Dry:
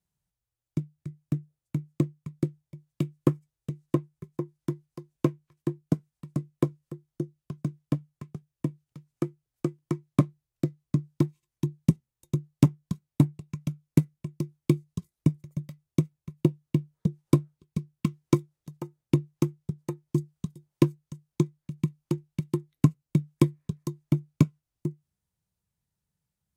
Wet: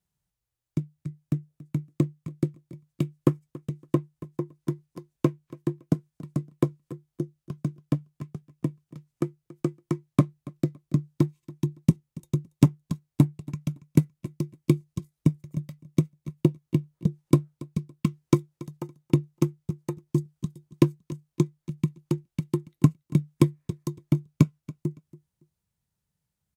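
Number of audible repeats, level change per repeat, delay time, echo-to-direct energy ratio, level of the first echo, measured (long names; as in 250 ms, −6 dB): 2, −13.0 dB, 281 ms, −20.0 dB, −20.0 dB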